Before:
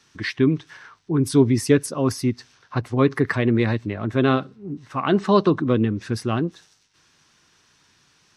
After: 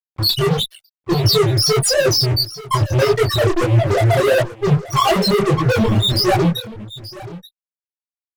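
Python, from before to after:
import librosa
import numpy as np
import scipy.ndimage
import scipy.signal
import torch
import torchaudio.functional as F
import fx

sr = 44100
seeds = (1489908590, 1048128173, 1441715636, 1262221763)

p1 = fx.weighting(x, sr, curve='D')
p2 = fx.spec_repair(p1, sr, seeds[0], start_s=3.67, length_s=0.46, low_hz=570.0, high_hz=1300.0, source='both')
p3 = fx.peak_eq(p2, sr, hz=2200.0, db=-8.5, octaves=0.52)
p4 = fx.level_steps(p3, sr, step_db=12)
p5 = p3 + F.gain(torch.from_numpy(p4), -1.0).numpy()
p6 = fx.leveller(p5, sr, passes=5)
p7 = fx.rider(p6, sr, range_db=3, speed_s=0.5)
p8 = fx.fixed_phaser(p7, sr, hz=660.0, stages=4)
p9 = fx.spec_topn(p8, sr, count=1)
p10 = fx.fuzz(p9, sr, gain_db=33.0, gate_db=-41.0)
p11 = p10 + 10.0 ** (-17.0 / 20.0) * np.pad(p10, (int(880 * sr / 1000.0), 0))[:len(p10)]
p12 = fx.detune_double(p11, sr, cents=55)
y = F.gain(torch.from_numpy(p12), 3.5).numpy()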